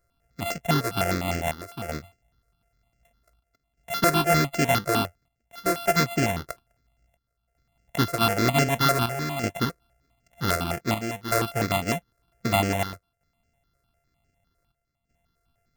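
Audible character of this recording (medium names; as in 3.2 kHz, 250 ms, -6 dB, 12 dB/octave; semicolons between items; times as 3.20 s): a buzz of ramps at a fixed pitch in blocks of 64 samples; chopped level 0.53 Hz, depth 65%, duty 80%; notches that jump at a steady rate 9.9 Hz 840–3700 Hz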